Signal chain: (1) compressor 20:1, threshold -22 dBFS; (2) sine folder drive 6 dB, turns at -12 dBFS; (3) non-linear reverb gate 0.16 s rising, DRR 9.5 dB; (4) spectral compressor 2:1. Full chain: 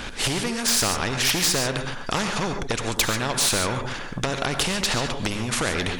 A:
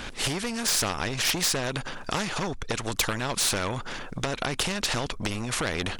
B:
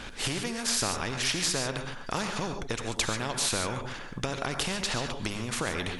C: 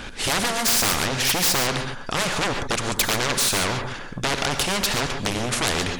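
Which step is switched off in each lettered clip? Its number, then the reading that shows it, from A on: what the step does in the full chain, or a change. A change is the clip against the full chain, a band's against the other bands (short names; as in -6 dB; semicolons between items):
3, loudness change -4.0 LU; 2, distortion -13 dB; 1, mean gain reduction 6.5 dB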